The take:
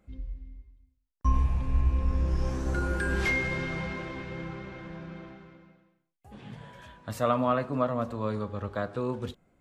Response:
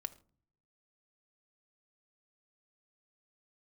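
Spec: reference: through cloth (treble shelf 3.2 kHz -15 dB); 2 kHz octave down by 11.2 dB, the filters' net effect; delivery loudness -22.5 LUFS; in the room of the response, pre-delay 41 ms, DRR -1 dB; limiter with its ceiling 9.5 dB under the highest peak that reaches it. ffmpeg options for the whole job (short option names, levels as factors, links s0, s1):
-filter_complex "[0:a]equalizer=f=2000:t=o:g=-9,alimiter=limit=0.075:level=0:latency=1,asplit=2[s0][s1];[1:a]atrim=start_sample=2205,adelay=41[s2];[s1][s2]afir=irnorm=-1:irlink=0,volume=1.5[s3];[s0][s3]amix=inputs=2:normalize=0,highshelf=f=3200:g=-15,volume=2.51"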